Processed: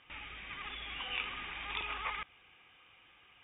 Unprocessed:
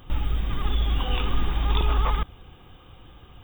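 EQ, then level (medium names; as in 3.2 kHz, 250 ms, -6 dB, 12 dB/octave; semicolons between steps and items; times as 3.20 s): band-pass filter 2.3 kHz, Q 3.9; distance through air 99 m; tilt EQ -1.5 dB/octave; +6.0 dB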